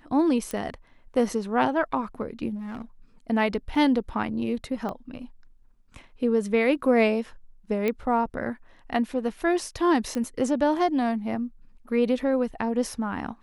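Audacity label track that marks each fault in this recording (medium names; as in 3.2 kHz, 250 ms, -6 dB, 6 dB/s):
0.510000	0.510000	pop -17 dBFS
2.550000	2.820000	clipped -31.5 dBFS
3.750000	3.750000	dropout 4.3 ms
4.890000	4.890000	pop -21 dBFS
7.880000	7.880000	pop -14 dBFS
10.150000	10.150000	pop -19 dBFS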